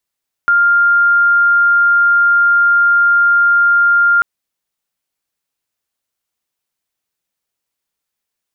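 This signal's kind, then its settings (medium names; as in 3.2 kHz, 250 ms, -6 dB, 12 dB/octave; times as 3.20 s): tone sine 1.4 kHz -7.5 dBFS 3.74 s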